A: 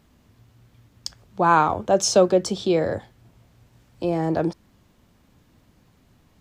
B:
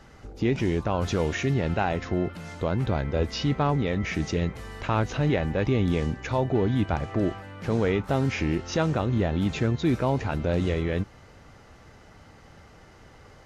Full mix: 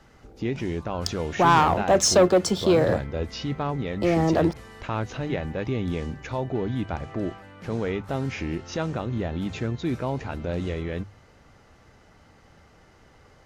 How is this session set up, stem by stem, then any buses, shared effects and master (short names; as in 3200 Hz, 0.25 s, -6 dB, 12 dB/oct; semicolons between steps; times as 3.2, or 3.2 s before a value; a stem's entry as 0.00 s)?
-5.0 dB, 0.00 s, no send, sample leveller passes 2
-3.5 dB, 0.00 s, no send, dry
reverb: off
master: notches 50/100/150 Hz